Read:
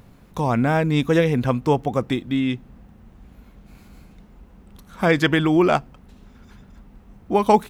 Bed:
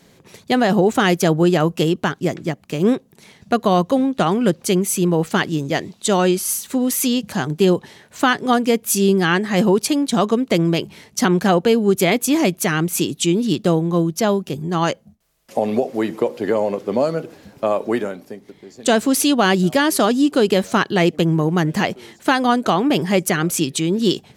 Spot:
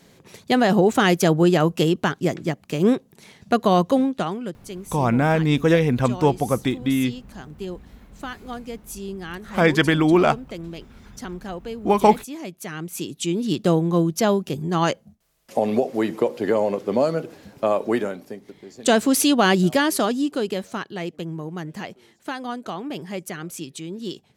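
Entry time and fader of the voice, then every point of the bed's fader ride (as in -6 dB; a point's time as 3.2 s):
4.55 s, +0.5 dB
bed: 4.01 s -1.5 dB
4.59 s -17.5 dB
12.41 s -17.5 dB
13.72 s -1.5 dB
19.67 s -1.5 dB
20.92 s -14 dB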